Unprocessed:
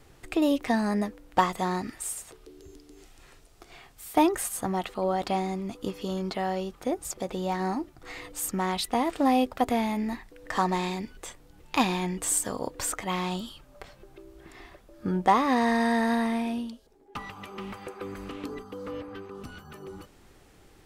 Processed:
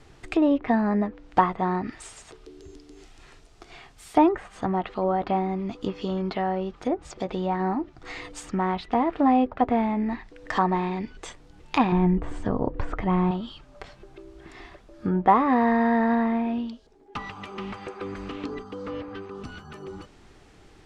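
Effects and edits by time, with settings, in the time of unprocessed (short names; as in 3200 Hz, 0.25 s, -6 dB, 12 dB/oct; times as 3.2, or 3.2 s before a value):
11.92–13.31 tilt -3 dB/oct
whole clip: treble ducked by the level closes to 1700 Hz, closed at -25 dBFS; LPF 6800 Hz 12 dB/oct; notch 530 Hz, Q 12; gain +3.5 dB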